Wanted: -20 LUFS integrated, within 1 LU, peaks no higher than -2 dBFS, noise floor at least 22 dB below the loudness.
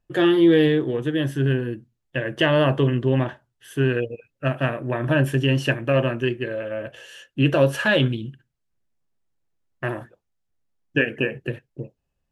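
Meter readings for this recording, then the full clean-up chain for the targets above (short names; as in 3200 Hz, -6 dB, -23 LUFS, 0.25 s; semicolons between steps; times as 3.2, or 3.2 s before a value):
loudness -22.0 LUFS; peak -5.5 dBFS; loudness target -20.0 LUFS
-> gain +2 dB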